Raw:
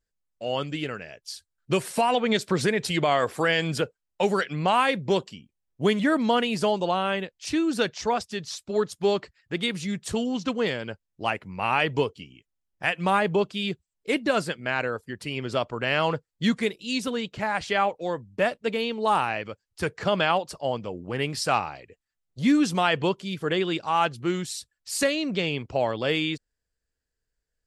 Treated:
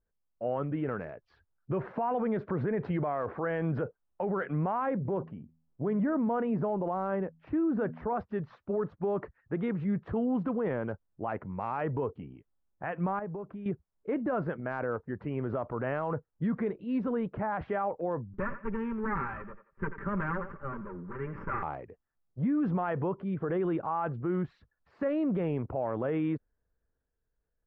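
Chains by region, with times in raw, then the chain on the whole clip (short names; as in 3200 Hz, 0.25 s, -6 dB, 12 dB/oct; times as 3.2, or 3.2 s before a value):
4.78–8.07 LPF 1900 Hz 6 dB/oct + de-hum 80.74 Hz, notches 3
13.19–13.66 LPF 2300 Hz + compressor, threshold -37 dBFS
18.33–21.63 minimum comb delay 5.1 ms + fixed phaser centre 1700 Hz, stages 4 + thinning echo 87 ms, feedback 34%, high-pass 400 Hz, level -15 dB
whole clip: LPF 1400 Hz 24 dB/oct; limiter -23 dBFS; transient shaper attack 0 dB, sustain +5 dB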